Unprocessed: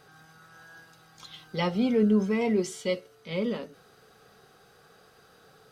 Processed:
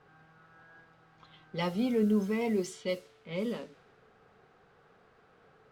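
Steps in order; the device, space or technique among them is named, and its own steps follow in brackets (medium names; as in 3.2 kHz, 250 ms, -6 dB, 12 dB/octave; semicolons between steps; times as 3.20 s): cassette deck with a dynamic noise filter (white noise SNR 24 dB; level-controlled noise filter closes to 1.5 kHz, open at -23.5 dBFS); trim -4.5 dB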